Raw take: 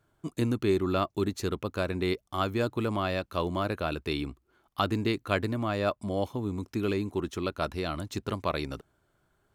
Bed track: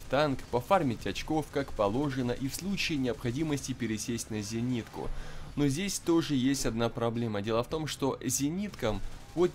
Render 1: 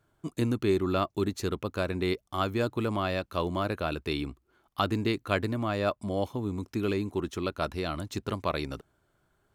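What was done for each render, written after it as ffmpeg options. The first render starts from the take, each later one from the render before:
-af anull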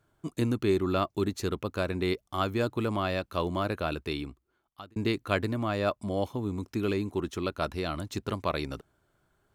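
-filter_complex "[0:a]asplit=2[a][b];[a]atrim=end=4.96,asetpts=PTS-STARTPTS,afade=t=out:st=3.91:d=1.05[c];[b]atrim=start=4.96,asetpts=PTS-STARTPTS,afade=t=in:d=0.004:c=hsin[d];[c][d]concat=n=2:v=0:a=1"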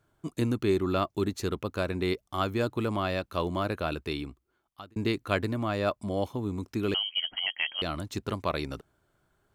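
-filter_complex "[0:a]asettb=1/sr,asplit=3[a][b][c];[a]atrim=end=6.944[d];[b]atrim=start=6.94:end=7.82,asetpts=PTS-STARTPTS,afade=t=in:d=0.004:c=qsin,afade=t=out:st=0.876:d=0.004:c=qsin,lowpass=f=2.8k:t=q:w=0.5098,lowpass=f=2.8k:t=q:w=0.6013,lowpass=f=2.8k:t=q:w=0.9,lowpass=f=2.8k:t=q:w=2.563,afreqshift=-3300[e];[c]atrim=start=7.816[f];[d][e]acrossfade=d=0.004:c1=hsin:c2=qsin[g];[g][f]acrossfade=d=0.004:c1=qsin:c2=hsin"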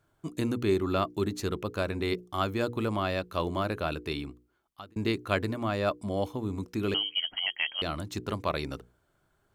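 -af "bandreject=f=60:t=h:w=6,bandreject=f=120:t=h:w=6,bandreject=f=180:t=h:w=6,bandreject=f=240:t=h:w=6,bandreject=f=300:t=h:w=6,bandreject=f=360:t=h:w=6,bandreject=f=420:t=h:w=6,bandreject=f=480:t=h:w=6"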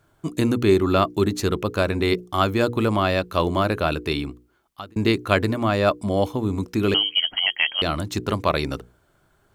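-af "volume=9dB,alimiter=limit=-1dB:level=0:latency=1"

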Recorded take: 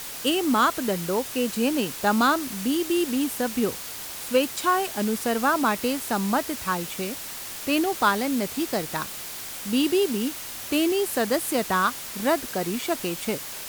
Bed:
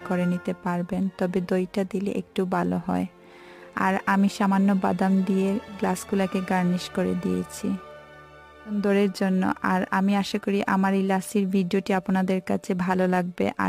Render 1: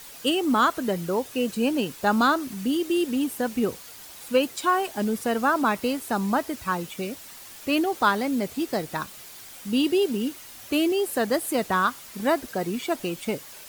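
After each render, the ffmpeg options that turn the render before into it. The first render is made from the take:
-af "afftdn=nr=9:nf=-36"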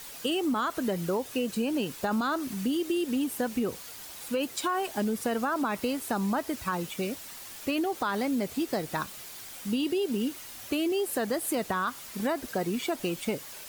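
-af "alimiter=limit=-16.5dB:level=0:latency=1:release=13,acompressor=threshold=-25dB:ratio=6"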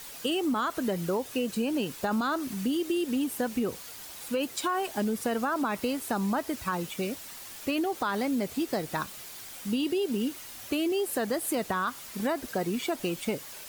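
-af anull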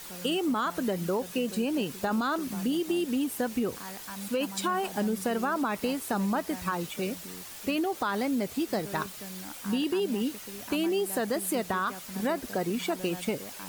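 -filter_complex "[1:a]volume=-20.5dB[a];[0:a][a]amix=inputs=2:normalize=0"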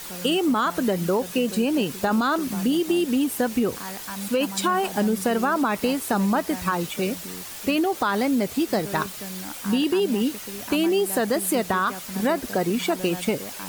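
-af "volume=6.5dB"

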